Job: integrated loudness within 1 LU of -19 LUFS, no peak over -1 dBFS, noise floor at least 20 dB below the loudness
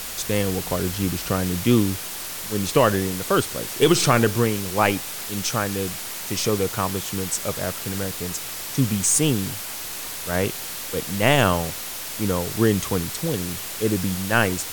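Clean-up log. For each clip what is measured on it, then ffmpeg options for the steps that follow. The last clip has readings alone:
noise floor -33 dBFS; noise floor target -43 dBFS; loudness -23.0 LUFS; peak -3.5 dBFS; loudness target -19.0 LUFS
-> -af "afftdn=nr=10:nf=-33"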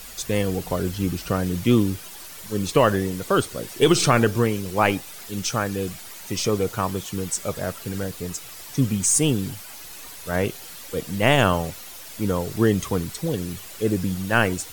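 noise floor -40 dBFS; noise floor target -44 dBFS
-> -af "afftdn=nr=6:nf=-40"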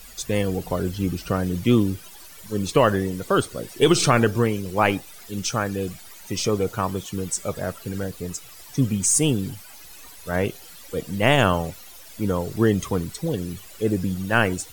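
noise floor -44 dBFS; loudness -23.5 LUFS; peak -4.0 dBFS; loudness target -19.0 LUFS
-> -af "volume=4.5dB,alimiter=limit=-1dB:level=0:latency=1"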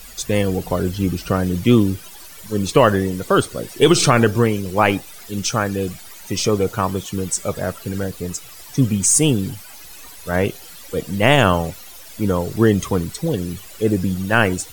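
loudness -19.0 LUFS; peak -1.0 dBFS; noise floor -39 dBFS

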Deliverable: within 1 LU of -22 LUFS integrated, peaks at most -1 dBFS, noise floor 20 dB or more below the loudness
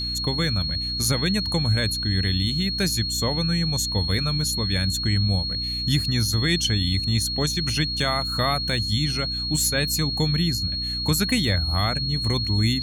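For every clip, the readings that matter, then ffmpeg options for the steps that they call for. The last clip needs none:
hum 60 Hz; harmonics up to 300 Hz; hum level -31 dBFS; steady tone 4300 Hz; tone level -26 dBFS; loudness -22.5 LUFS; peak -8.5 dBFS; loudness target -22.0 LUFS
-> -af "bandreject=f=60:t=h:w=4,bandreject=f=120:t=h:w=4,bandreject=f=180:t=h:w=4,bandreject=f=240:t=h:w=4,bandreject=f=300:t=h:w=4"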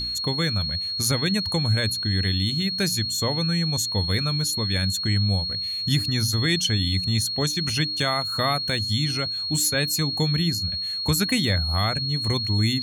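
hum none; steady tone 4300 Hz; tone level -26 dBFS
-> -af "bandreject=f=4.3k:w=30"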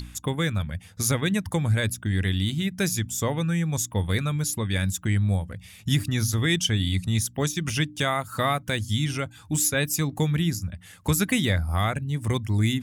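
steady tone none; loudness -25.5 LUFS; peak -10.0 dBFS; loudness target -22.0 LUFS
-> -af "volume=3.5dB"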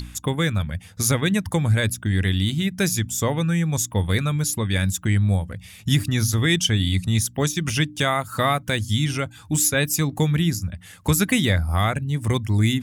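loudness -22.0 LUFS; peak -6.5 dBFS; noise floor -46 dBFS

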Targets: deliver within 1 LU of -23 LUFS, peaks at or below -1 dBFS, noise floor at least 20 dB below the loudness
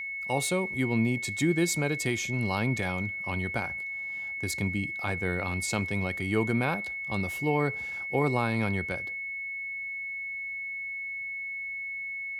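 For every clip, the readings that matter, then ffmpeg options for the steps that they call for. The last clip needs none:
steady tone 2200 Hz; tone level -33 dBFS; loudness -29.5 LUFS; peak -12.5 dBFS; loudness target -23.0 LUFS
-> -af "bandreject=f=2.2k:w=30"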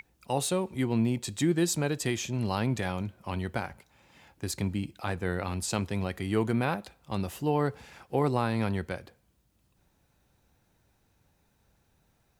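steady tone none; loudness -30.5 LUFS; peak -13.0 dBFS; loudness target -23.0 LUFS
-> -af "volume=7.5dB"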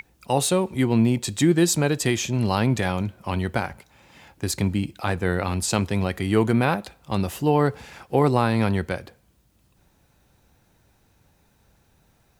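loudness -23.0 LUFS; peak -5.5 dBFS; noise floor -63 dBFS

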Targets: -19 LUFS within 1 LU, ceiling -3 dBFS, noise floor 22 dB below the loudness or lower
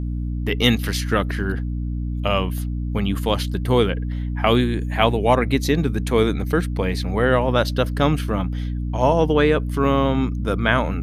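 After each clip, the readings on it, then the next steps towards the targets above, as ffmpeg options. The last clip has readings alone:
hum 60 Hz; harmonics up to 300 Hz; hum level -22 dBFS; loudness -21.0 LUFS; peak -1.5 dBFS; loudness target -19.0 LUFS
-> -af "bandreject=f=60:t=h:w=6,bandreject=f=120:t=h:w=6,bandreject=f=180:t=h:w=6,bandreject=f=240:t=h:w=6,bandreject=f=300:t=h:w=6"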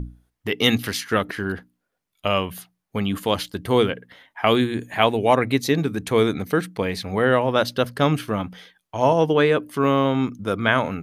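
hum none; loudness -21.5 LUFS; peak -1.5 dBFS; loudness target -19.0 LUFS
-> -af "volume=2.5dB,alimiter=limit=-3dB:level=0:latency=1"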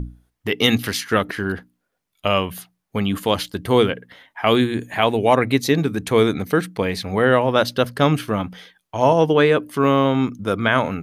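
loudness -19.5 LUFS; peak -3.0 dBFS; noise floor -76 dBFS

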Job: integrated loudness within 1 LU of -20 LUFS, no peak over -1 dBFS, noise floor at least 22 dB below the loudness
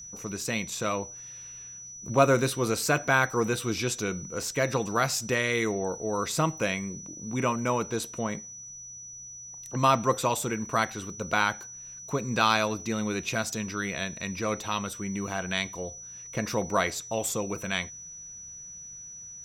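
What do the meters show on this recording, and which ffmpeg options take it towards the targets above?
steady tone 5900 Hz; tone level -41 dBFS; loudness -28.5 LUFS; peak -7.0 dBFS; loudness target -20.0 LUFS
-> -af "bandreject=f=5.9k:w=30"
-af "volume=8.5dB,alimiter=limit=-1dB:level=0:latency=1"

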